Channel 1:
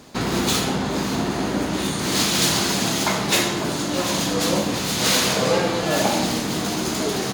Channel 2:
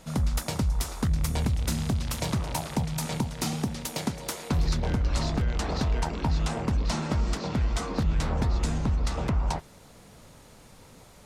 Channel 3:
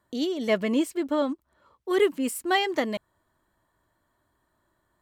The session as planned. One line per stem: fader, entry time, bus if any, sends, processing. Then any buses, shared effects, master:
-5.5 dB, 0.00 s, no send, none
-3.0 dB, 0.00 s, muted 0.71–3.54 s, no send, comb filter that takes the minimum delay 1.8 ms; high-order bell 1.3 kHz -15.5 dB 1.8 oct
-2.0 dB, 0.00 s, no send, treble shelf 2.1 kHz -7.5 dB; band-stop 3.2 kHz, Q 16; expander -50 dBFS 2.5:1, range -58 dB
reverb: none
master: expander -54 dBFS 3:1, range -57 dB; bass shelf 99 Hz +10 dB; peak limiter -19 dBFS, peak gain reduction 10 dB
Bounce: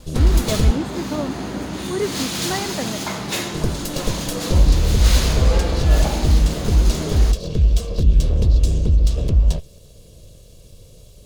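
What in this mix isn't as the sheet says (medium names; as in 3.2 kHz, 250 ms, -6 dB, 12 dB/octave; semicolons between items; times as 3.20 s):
stem 2 -3.0 dB -> +5.0 dB; master: missing peak limiter -19 dBFS, peak gain reduction 10 dB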